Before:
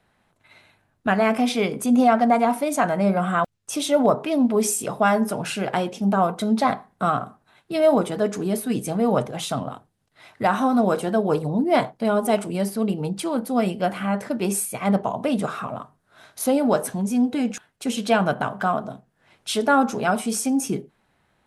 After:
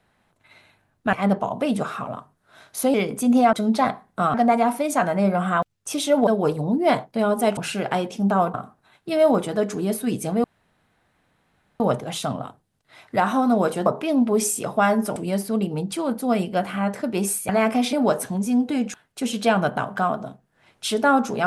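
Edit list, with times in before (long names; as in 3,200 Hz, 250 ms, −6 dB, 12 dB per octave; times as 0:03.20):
0:01.13–0:01.57: swap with 0:14.76–0:16.57
0:04.09–0:05.39: swap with 0:11.13–0:12.43
0:06.36–0:07.17: move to 0:02.16
0:09.07: splice in room tone 1.36 s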